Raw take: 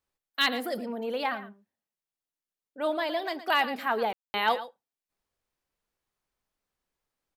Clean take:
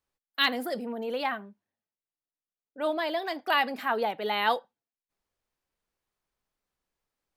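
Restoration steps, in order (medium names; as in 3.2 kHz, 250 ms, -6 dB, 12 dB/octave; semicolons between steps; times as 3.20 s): clip repair -14 dBFS; room tone fill 4.13–4.34 s; inverse comb 115 ms -14 dB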